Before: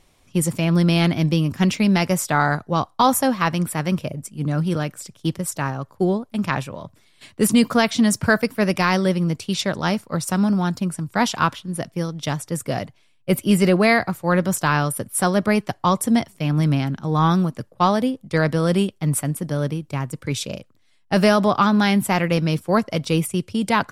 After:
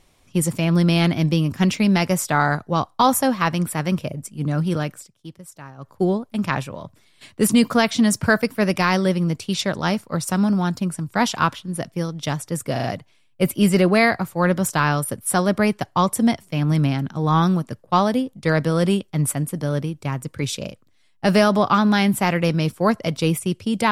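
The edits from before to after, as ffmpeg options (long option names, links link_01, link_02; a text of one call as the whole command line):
ffmpeg -i in.wav -filter_complex "[0:a]asplit=6[link_01][link_02][link_03][link_04][link_05][link_06];[link_01]atrim=end=5.08,asetpts=PTS-STARTPTS,afade=type=out:start_time=4.94:duration=0.14:silence=0.177828[link_07];[link_02]atrim=start=5.08:end=5.77,asetpts=PTS-STARTPTS,volume=-15dB[link_08];[link_03]atrim=start=5.77:end=12.762,asetpts=PTS-STARTPTS,afade=type=in:duration=0.14:silence=0.177828[link_09];[link_04]atrim=start=12.718:end=12.762[link_10];[link_05]atrim=start=12.718:end=12.762[link_11];[link_06]atrim=start=12.718[link_12];[link_07][link_08][link_09]concat=n=3:v=0:a=1[link_13];[link_13][link_10]acrossfade=duration=0.004:curve1=hsin:curve2=hsin[link_14];[link_14][link_11]acrossfade=duration=0.004:curve1=hsin:curve2=hsin[link_15];[link_15][link_12]acrossfade=duration=0.004:curve1=hsin:curve2=hsin" out.wav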